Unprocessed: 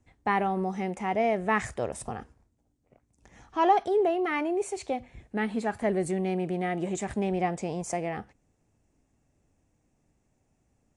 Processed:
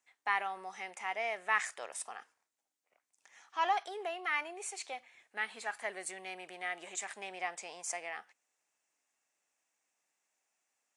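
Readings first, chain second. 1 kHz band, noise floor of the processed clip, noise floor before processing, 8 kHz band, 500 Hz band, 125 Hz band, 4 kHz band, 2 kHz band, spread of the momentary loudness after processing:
−8.0 dB, below −85 dBFS, −73 dBFS, 0.0 dB, −16.0 dB, below −30 dB, 0.0 dB, −1.0 dB, 12 LU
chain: high-pass filter 1,300 Hz 12 dB per octave

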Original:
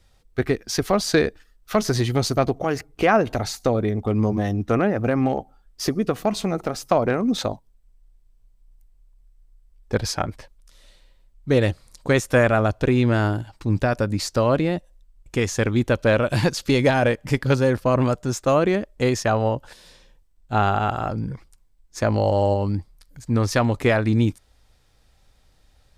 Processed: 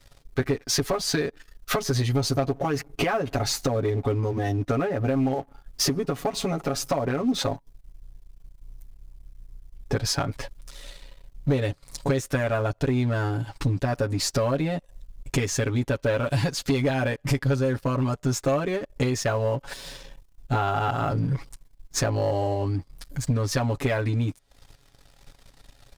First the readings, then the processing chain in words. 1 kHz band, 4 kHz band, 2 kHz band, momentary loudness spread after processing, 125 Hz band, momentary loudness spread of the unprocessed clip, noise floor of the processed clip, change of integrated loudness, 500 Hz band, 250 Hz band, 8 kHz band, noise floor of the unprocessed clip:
−5.0 dB, 0.0 dB, −5.5 dB, 8 LU, −2.0 dB, 9 LU, −59 dBFS, −4.0 dB, −5.5 dB, −5.0 dB, +1.5 dB, −59 dBFS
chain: downward compressor 16 to 1, threshold −30 dBFS, peak gain reduction 18.5 dB
comb filter 7.2 ms, depth 99%
leveller curve on the samples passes 2

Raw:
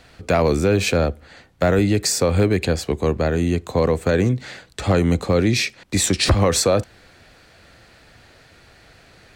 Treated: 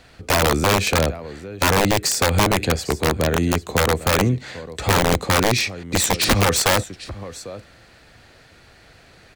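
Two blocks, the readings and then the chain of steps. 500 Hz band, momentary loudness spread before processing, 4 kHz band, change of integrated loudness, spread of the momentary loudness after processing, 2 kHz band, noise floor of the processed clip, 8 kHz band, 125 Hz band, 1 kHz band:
−2.5 dB, 6 LU, +3.5 dB, +0.5 dB, 16 LU, +5.0 dB, −50 dBFS, +2.0 dB, −1.5 dB, +6.0 dB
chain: single-tap delay 798 ms −17 dB
wrap-around overflow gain 10 dB

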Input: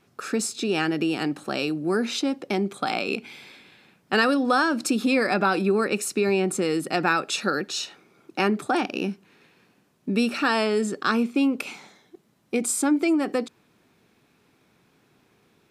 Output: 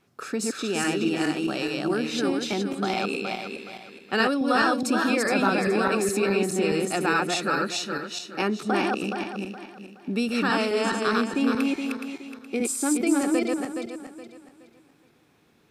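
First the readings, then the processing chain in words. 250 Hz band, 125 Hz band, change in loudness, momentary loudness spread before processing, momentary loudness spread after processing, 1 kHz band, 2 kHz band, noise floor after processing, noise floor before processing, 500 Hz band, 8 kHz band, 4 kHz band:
−0.5 dB, −0.5 dB, −1.0 dB, 9 LU, 12 LU, 0.0 dB, 0.0 dB, −61 dBFS, −64 dBFS, −0.5 dB, −0.5 dB, −0.5 dB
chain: feedback delay that plays each chunk backwards 210 ms, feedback 55%, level −1 dB
level −3.5 dB

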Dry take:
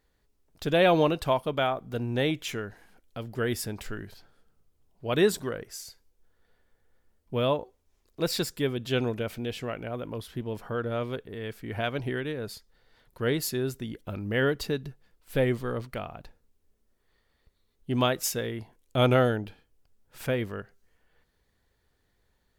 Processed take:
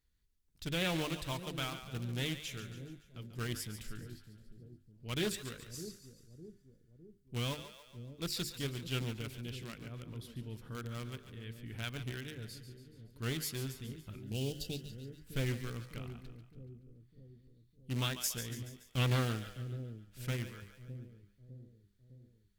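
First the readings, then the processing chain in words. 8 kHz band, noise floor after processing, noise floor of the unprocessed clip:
−5.0 dB, −70 dBFS, −72 dBFS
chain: in parallel at −10 dB: bit reduction 4 bits
on the sum: guitar amp tone stack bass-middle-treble 6-0-2
mains-hum notches 50/100/150/200/250/300/350/400 Hz
on a send: echo with a time of its own for lows and highs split 500 Hz, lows 607 ms, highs 142 ms, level −10.5 dB
on the sum: healed spectral selection 0:14.25–0:15.17, 840–2,600 Hz after
notch filter 1,800 Hz, Q 29
highs frequency-modulated by the lows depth 0.47 ms
level +8 dB

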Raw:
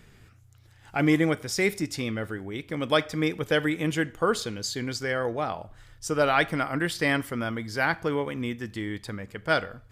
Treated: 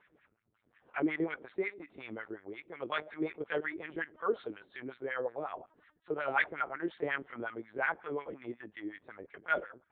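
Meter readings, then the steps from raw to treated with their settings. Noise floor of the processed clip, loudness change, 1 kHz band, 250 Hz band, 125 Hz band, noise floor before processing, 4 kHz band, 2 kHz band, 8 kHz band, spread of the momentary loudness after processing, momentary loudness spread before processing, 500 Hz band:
−76 dBFS, −9.5 dB, −8.0 dB, −12.0 dB, −21.5 dB, −55 dBFS, −18.0 dB, −7.5 dB, below −40 dB, 13 LU, 11 LU, −9.5 dB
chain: linear-prediction vocoder at 8 kHz pitch kept
auto-filter band-pass sine 5.5 Hz 340–2,000 Hz
level −2 dB

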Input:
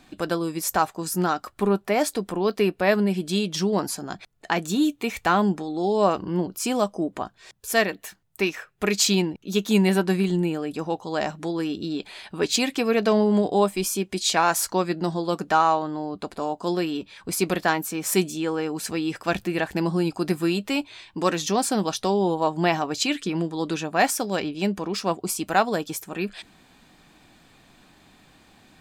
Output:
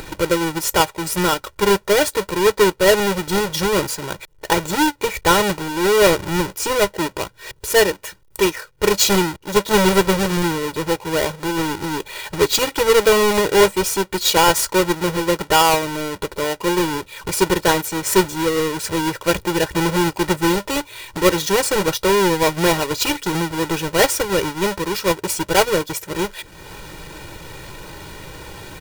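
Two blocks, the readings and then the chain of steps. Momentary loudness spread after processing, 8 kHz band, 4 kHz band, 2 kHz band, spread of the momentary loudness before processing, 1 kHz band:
15 LU, +7.5 dB, +8.5 dB, +7.5 dB, 9 LU, +5.0 dB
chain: each half-wave held at its own peak
comb filter 2.1 ms, depth 89%
upward compression, threshold −23 dBFS

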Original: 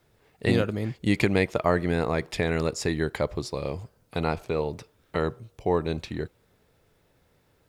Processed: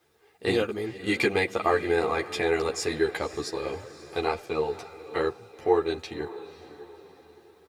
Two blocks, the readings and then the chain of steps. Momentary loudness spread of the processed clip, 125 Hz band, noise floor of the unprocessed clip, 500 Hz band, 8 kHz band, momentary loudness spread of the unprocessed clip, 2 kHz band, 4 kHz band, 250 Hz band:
14 LU, −10.5 dB, −66 dBFS, +1.5 dB, +1.5 dB, 11 LU, +1.5 dB, +2.0 dB, −4.0 dB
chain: high-pass filter 320 Hz 6 dB per octave
comb filter 2.5 ms, depth 46%
on a send: feedback delay with all-pass diffusion 544 ms, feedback 45%, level −14.5 dB
on the sum: string-ensemble chorus
level +3.5 dB

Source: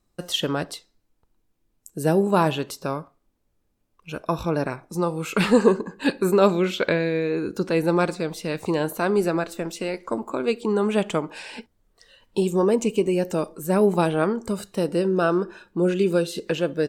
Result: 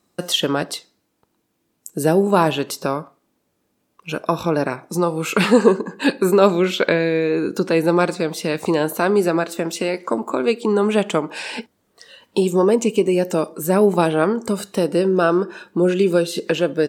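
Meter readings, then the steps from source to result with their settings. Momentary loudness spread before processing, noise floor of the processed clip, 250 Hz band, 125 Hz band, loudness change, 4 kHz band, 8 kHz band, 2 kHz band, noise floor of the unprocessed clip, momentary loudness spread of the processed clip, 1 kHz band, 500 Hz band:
11 LU, −70 dBFS, +4.0 dB, +2.5 dB, +4.5 dB, +5.5 dB, +6.5 dB, +5.0 dB, −71 dBFS, 9 LU, +4.5 dB, +4.5 dB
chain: high-pass filter 160 Hz 12 dB per octave
in parallel at +1.5 dB: downward compressor, threshold −31 dBFS, peak gain reduction 18.5 dB
on the sum: level +2.5 dB

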